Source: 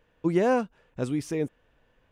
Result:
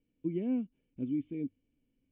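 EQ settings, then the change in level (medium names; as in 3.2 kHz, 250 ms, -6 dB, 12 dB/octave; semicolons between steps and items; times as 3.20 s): cascade formant filter i; distance through air 200 m; hum notches 50/100 Hz; 0.0 dB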